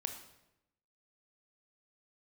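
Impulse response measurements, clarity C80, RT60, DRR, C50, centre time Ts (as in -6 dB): 10.5 dB, 0.90 s, 5.0 dB, 8.0 dB, 19 ms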